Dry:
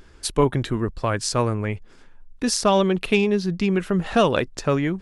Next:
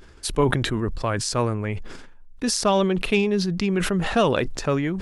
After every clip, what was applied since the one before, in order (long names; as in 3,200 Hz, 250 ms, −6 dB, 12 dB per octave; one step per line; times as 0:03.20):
level that may fall only so fast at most 43 dB per second
level −2 dB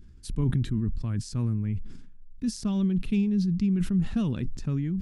drawn EQ curve 220 Hz 0 dB, 550 Hz −25 dB, 5,300 Hz −15 dB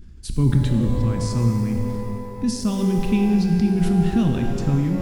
reverb with rising layers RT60 2.4 s, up +12 semitones, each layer −8 dB, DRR 4 dB
level +6.5 dB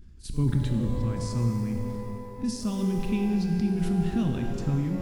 backwards echo 42 ms −16.5 dB
level −7 dB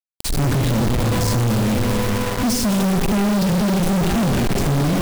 log-companded quantiser 2 bits
level +8 dB